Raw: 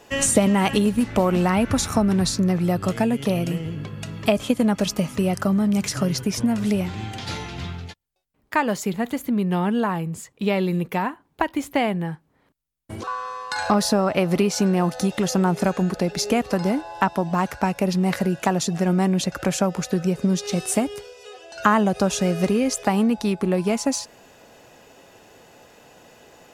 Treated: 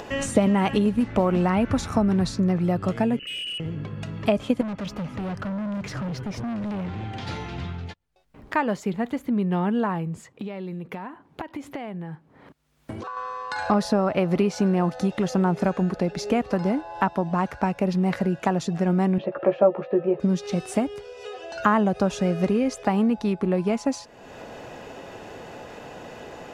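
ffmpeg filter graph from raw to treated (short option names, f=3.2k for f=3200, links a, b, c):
-filter_complex "[0:a]asettb=1/sr,asplit=3[a][b][c];[a]atrim=end=3.194[d];[b]atrim=start=3.19:end=3.6,asetpts=PTS-STARTPTS,afade=t=in:d=0.004:c=qsin,afade=t=out:st=0.406:d=0.004:c=qsin,lowpass=f=2.6k:t=q:w=0.5098,lowpass=f=2.6k:t=q:w=0.6013,lowpass=f=2.6k:t=q:w=0.9,lowpass=f=2.6k:t=q:w=2.563,afreqshift=-3100,asoftclip=type=hard:threshold=-25.5dB,asuperstop=centerf=900:order=4:qfactor=0.67[e];[c]atrim=start=3.596[f];[d][e]acrossfade=d=0.004:c1=hsin:c2=qsin[g];[g][f]acrossfade=d=0.004:c1=qsin:c2=hsin,asettb=1/sr,asplit=3[h][i][j];[h]atrim=end=4.614[k];[i]atrim=start=4.61:end=7.17,asetpts=PTS-STARTPTS,afade=t=in:d=0.004:c=qsin,afade=t=out:st=2.556:d=0.004:c=qsin,equalizer=f=10k:w=0.54:g=-9.5,asoftclip=type=hard:threshold=-27dB[l];[j]atrim=start=7.166[m];[k][l]acrossfade=d=0.004:c1=hsin:c2=qsin[n];[n][m]acrossfade=d=0.004:c1=qsin:c2=hsin,asettb=1/sr,asplit=3[o][p][q];[o]atrim=end=10.274[r];[p]atrim=start=10.27:end=13.17,asetpts=PTS-STARTPTS,afade=t=in:d=0.004:c=qsin,afade=t=out:st=2.896:d=0.004:c=qsin,highpass=85,acompressor=threshold=-34dB:ratio=3:attack=3.2:release=140:knee=1:detection=peak[s];[q]atrim=start=13.166[t];[r][s]acrossfade=d=0.004:c1=hsin:c2=qsin[u];[u][t]acrossfade=d=0.004:c1=qsin:c2=hsin,asettb=1/sr,asplit=3[v][w][x];[v]atrim=end=19.184[y];[w]atrim=start=19.18:end=20.2,asetpts=PTS-STARTPTS,afade=t=in:d=0.004:c=qsin,afade=t=out:st=1.016:d=0.004:c=qsin,highpass=240,equalizer=f=250:t=q:w=4:g=-10,equalizer=f=360:t=q:w=4:g=7,equalizer=f=590:t=q:w=4:g=9,equalizer=f=1.5k:t=q:w=4:g=3,equalizer=f=2.1k:t=q:w=4:g=-7,lowpass=f=2.5k:w=0.5412,lowpass=f=2.5k:w=1.3066,bandreject=f=1.5k:w=5,asplit=2[z][aa];[aa]adelay=14,volume=-6dB[ab];[z][ab]amix=inputs=2:normalize=0,atrim=end_sample=44982[ac];[x]atrim=start=20.196[ad];[y][ac]acrossfade=d=0.004:c1=hsin:c2=qsin[ae];[ae][ad]acrossfade=d=0.004:c1=qsin:c2=hsin,aemphasis=mode=reproduction:type=75kf,acompressor=mode=upward:threshold=-26dB:ratio=2.5,volume=-1.5dB"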